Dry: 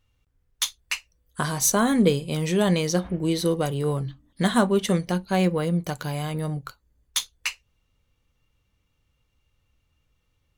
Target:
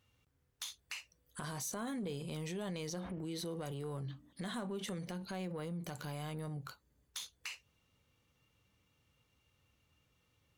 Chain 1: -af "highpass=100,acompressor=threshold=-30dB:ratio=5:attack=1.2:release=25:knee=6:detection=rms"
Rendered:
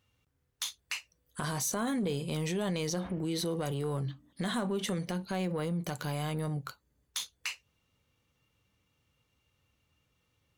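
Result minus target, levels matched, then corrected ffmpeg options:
compressor: peak gain reduction -8.5 dB
-af "highpass=100,acompressor=threshold=-40.5dB:ratio=5:attack=1.2:release=25:knee=6:detection=rms"

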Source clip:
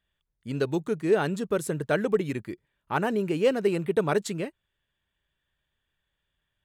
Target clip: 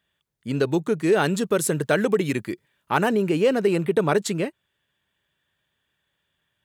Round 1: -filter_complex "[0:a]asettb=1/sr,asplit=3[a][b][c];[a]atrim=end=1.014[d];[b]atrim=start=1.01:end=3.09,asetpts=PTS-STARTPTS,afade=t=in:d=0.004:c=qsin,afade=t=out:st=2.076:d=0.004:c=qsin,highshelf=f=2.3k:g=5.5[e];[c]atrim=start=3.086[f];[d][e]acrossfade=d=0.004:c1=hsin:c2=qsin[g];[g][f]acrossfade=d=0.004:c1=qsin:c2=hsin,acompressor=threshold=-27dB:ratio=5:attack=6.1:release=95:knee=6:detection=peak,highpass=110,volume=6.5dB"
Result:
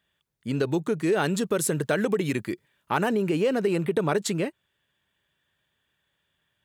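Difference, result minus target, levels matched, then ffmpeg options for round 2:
compressor: peak gain reduction +5 dB
-filter_complex "[0:a]asettb=1/sr,asplit=3[a][b][c];[a]atrim=end=1.014[d];[b]atrim=start=1.01:end=3.09,asetpts=PTS-STARTPTS,afade=t=in:d=0.004:c=qsin,afade=t=out:st=2.076:d=0.004:c=qsin,highshelf=f=2.3k:g=5.5[e];[c]atrim=start=3.086[f];[d][e]acrossfade=d=0.004:c1=hsin:c2=qsin[g];[g][f]acrossfade=d=0.004:c1=qsin:c2=hsin,acompressor=threshold=-20.5dB:ratio=5:attack=6.1:release=95:knee=6:detection=peak,highpass=110,volume=6.5dB"

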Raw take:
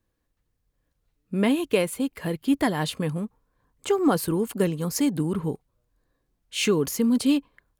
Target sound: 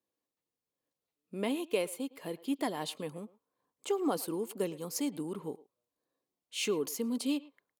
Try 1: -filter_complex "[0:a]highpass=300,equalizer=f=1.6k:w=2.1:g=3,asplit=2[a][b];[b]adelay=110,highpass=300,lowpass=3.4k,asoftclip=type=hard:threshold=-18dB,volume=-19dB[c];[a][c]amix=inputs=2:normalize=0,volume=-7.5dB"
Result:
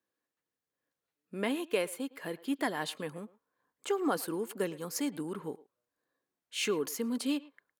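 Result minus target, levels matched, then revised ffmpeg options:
2000 Hz band +4.5 dB
-filter_complex "[0:a]highpass=300,equalizer=f=1.6k:w=2.1:g=-8,asplit=2[a][b];[b]adelay=110,highpass=300,lowpass=3.4k,asoftclip=type=hard:threshold=-18dB,volume=-19dB[c];[a][c]amix=inputs=2:normalize=0,volume=-7.5dB"

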